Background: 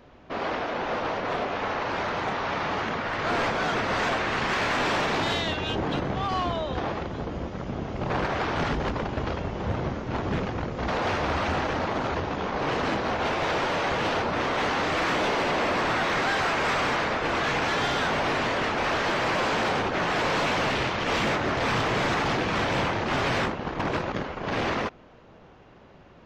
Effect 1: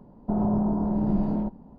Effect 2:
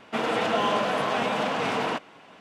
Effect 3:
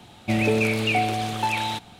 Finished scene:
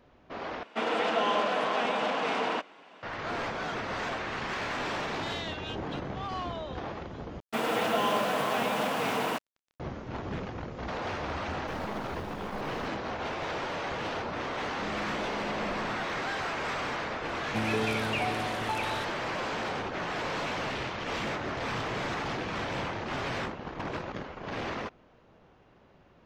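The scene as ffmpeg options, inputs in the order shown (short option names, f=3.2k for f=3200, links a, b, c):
-filter_complex "[2:a]asplit=2[a][b];[1:a]asplit=2[c][d];[0:a]volume=-8dB[e];[a]highpass=240,lowpass=6.3k[f];[b]acrusher=bits=5:mix=0:aa=0.5[g];[c]acrusher=bits=3:dc=4:mix=0:aa=0.000001[h];[e]asplit=3[i][j][k];[i]atrim=end=0.634[l];[f]atrim=end=2.4,asetpts=PTS-STARTPTS,volume=-2.5dB[m];[j]atrim=start=3.026:end=7.404[n];[g]atrim=end=2.4,asetpts=PTS-STARTPTS,volume=-3dB[o];[k]atrim=start=9.796[p];[h]atrim=end=1.78,asetpts=PTS-STARTPTS,volume=-17dB,afade=t=in:d=0.004:c=hsin,afade=t=out:st=1.776:d=0.004:c=hsin,adelay=11390[q];[d]atrim=end=1.78,asetpts=PTS-STARTPTS,volume=-17.5dB,afade=t=in:d=0.004:c=hsin,afade=t=out:st=1.776:d=0.004:c=hsin,adelay=14530[r];[3:a]atrim=end=1.99,asetpts=PTS-STARTPTS,volume=-9.5dB,afade=t=in:d=0.004:c=hsin,afade=t=out:st=1.986:d=0.004:c=hsin,adelay=17260[s];[l][m]acrossfade=d=0.004:c1=hsin:c2=hsin[t];[t][n]acrossfade=d=0.004:c1=hsin:c2=hsin[u];[u][o]acrossfade=d=0.004:c1=hsin:c2=hsin[v];[v][p]acrossfade=d=0.004:c1=hsin:c2=hsin[w];[w][q][r][s]amix=inputs=4:normalize=0"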